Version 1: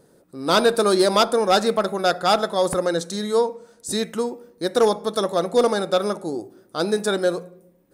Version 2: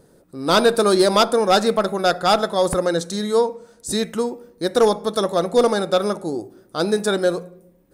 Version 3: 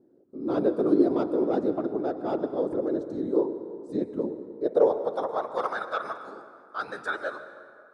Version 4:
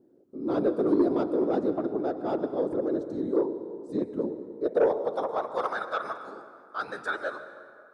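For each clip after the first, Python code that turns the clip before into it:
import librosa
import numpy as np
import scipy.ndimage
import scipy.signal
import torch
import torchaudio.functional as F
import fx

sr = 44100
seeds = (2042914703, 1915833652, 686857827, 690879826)

y1 = fx.low_shelf(x, sr, hz=76.0, db=11.0)
y1 = y1 * 10.0 ** (1.5 / 20.0)
y2 = fx.whisperise(y1, sr, seeds[0])
y2 = fx.filter_sweep_bandpass(y2, sr, from_hz=320.0, to_hz=1400.0, start_s=4.37, end_s=5.75, q=2.7)
y2 = fx.rev_plate(y2, sr, seeds[1], rt60_s=2.3, hf_ratio=0.55, predelay_ms=105, drr_db=11.0)
y2 = y2 * 10.0 ** (-1.5 / 20.0)
y3 = 10.0 ** (-14.0 / 20.0) * np.tanh(y2 / 10.0 ** (-14.0 / 20.0))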